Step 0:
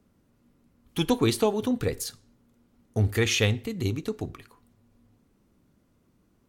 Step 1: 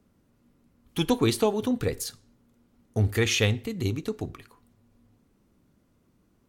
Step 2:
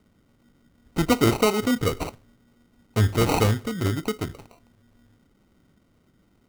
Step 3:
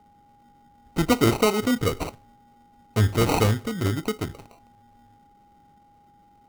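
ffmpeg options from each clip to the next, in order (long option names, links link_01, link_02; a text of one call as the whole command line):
ffmpeg -i in.wav -af anull out.wav
ffmpeg -i in.wav -af "acrusher=samples=26:mix=1:aa=0.000001,volume=3.5dB" out.wav
ffmpeg -i in.wav -af "aeval=exprs='val(0)+0.00178*sin(2*PI*820*n/s)':channel_layout=same" out.wav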